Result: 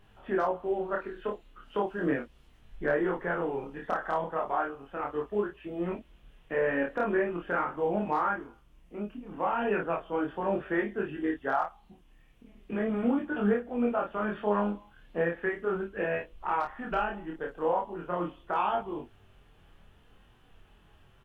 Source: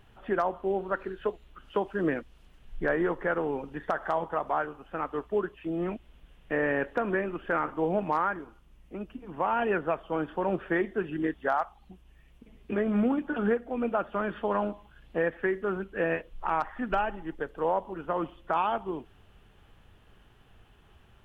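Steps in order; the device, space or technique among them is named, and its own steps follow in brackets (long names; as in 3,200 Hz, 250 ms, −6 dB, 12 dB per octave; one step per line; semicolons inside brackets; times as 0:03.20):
double-tracked vocal (double-tracking delay 29 ms −3 dB; chorus effect 0.37 Hz, delay 20 ms, depth 5.2 ms)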